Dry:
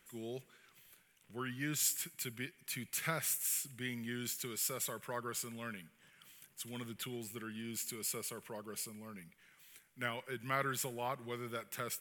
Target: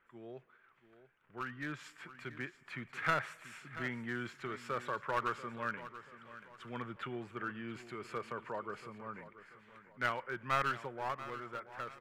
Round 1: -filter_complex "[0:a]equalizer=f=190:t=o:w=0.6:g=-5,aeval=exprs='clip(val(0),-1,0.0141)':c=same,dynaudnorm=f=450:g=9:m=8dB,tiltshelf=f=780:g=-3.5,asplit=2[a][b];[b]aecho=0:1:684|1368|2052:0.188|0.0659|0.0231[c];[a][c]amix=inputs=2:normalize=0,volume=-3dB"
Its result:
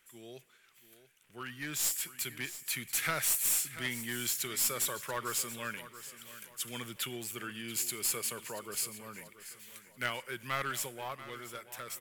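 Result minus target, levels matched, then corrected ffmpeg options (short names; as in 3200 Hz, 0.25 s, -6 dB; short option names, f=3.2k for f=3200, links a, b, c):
1000 Hz band -10.0 dB
-filter_complex "[0:a]lowpass=f=1.3k:t=q:w=1.6,equalizer=f=190:t=o:w=0.6:g=-5,aeval=exprs='clip(val(0),-1,0.0141)':c=same,dynaudnorm=f=450:g=9:m=8dB,tiltshelf=f=780:g=-3.5,asplit=2[a][b];[b]aecho=0:1:684|1368|2052:0.188|0.0659|0.0231[c];[a][c]amix=inputs=2:normalize=0,volume=-3dB"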